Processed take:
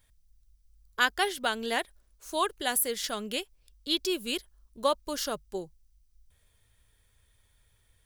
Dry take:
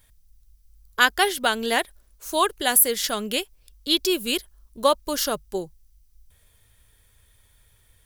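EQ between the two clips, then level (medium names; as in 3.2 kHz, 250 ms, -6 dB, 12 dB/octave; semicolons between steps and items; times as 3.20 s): peaking EQ 14 kHz -7.5 dB 0.58 oct; -7.0 dB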